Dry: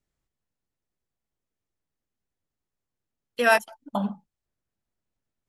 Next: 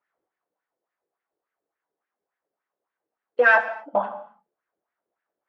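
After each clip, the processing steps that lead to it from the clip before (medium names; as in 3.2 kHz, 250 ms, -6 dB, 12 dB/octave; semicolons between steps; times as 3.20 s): overdrive pedal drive 18 dB, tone 1.1 kHz, clips at -7.5 dBFS; wah-wah 3.5 Hz 420–1800 Hz, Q 2.7; gated-style reverb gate 290 ms falling, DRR 8 dB; trim +7.5 dB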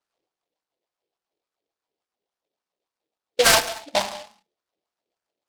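level-controlled noise filter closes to 1.4 kHz; delay time shaken by noise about 3.2 kHz, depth 0.13 ms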